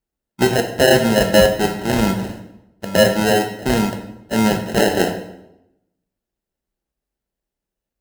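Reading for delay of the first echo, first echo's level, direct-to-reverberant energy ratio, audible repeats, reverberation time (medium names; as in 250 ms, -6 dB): no echo, no echo, 4.0 dB, no echo, 0.85 s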